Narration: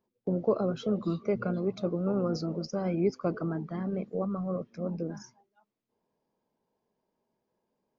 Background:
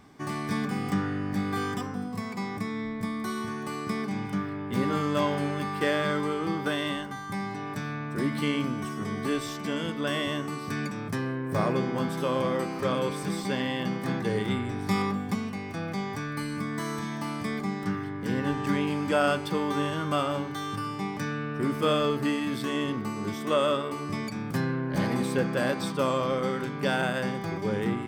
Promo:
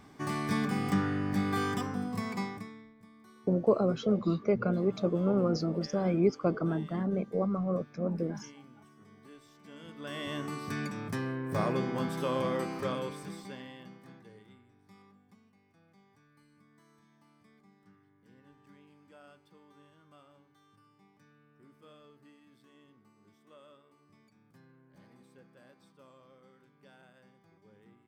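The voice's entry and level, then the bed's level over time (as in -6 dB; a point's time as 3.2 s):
3.20 s, +1.5 dB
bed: 2.4 s -1 dB
2.95 s -25 dB
9.5 s -25 dB
10.44 s -4 dB
12.73 s -4 dB
14.71 s -32 dB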